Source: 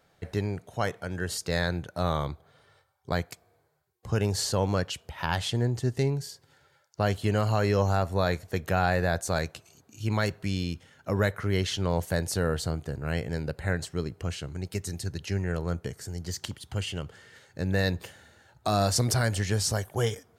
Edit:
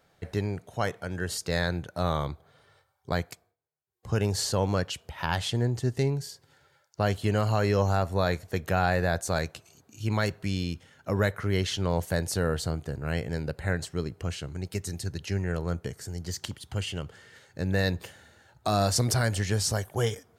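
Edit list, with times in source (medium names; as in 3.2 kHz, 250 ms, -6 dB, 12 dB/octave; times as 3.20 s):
3.31–4.11 s: dip -23.5 dB, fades 0.25 s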